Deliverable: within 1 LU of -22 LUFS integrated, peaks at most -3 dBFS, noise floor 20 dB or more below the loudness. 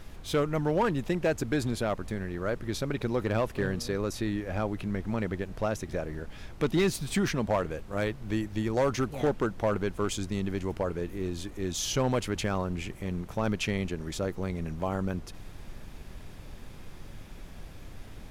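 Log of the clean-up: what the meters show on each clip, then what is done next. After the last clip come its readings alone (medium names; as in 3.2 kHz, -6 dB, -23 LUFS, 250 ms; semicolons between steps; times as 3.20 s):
clipped samples 0.7%; clipping level -19.5 dBFS; noise floor -45 dBFS; noise floor target -51 dBFS; loudness -31.0 LUFS; peak level -19.5 dBFS; loudness target -22.0 LUFS
-> clip repair -19.5 dBFS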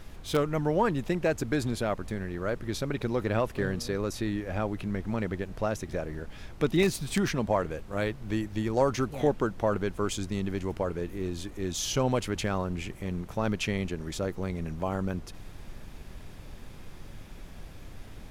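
clipped samples 0.0%; noise floor -45 dBFS; noise floor target -51 dBFS
-> noise print and reduce 6 dB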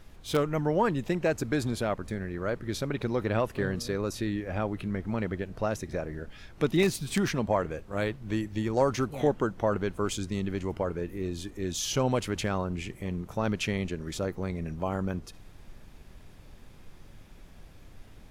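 noise floor -51 dBFS; loudness -30.5 LUFS; peak level -10.5 dBFS; loudness target -22.0 LUFS
-> trim +8.5 dB; peak limiter -3 dBFS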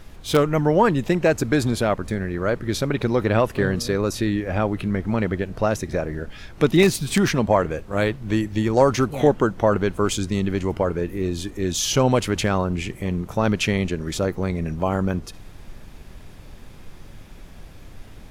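loudness -22.0 LUFS; peak level -3.0 dBFS; noise floor -42 dBFS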